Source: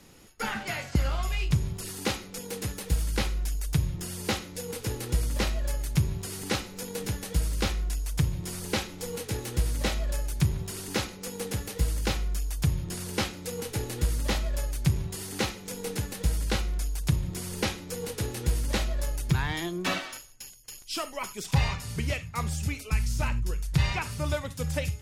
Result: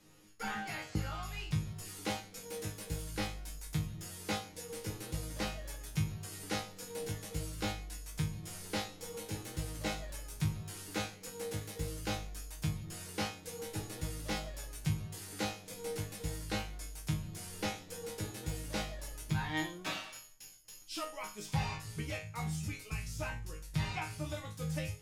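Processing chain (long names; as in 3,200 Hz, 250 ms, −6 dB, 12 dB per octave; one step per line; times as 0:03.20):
dynamic equaliser 790 Hz, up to +5 dB, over −50 dBFS, Q 5.8
resonators tuned to a chord G#2 fifth, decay 0.32 s
level +4.5 dB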